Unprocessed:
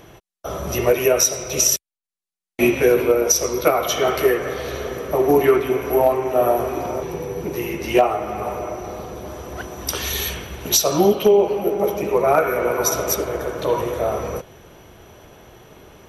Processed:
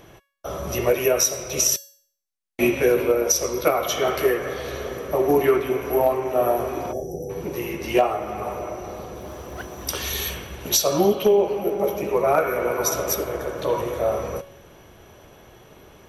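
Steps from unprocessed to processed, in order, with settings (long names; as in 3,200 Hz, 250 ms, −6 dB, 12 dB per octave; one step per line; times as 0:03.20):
0:06.92–0:07.30: time-frequency box erased 830–5,100 Hz
0:09.17–0:10.38: noise that follows the level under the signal 30 dB
tuned comb filter 560 Hz, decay 0.53 s, mix 70%
level +7 dB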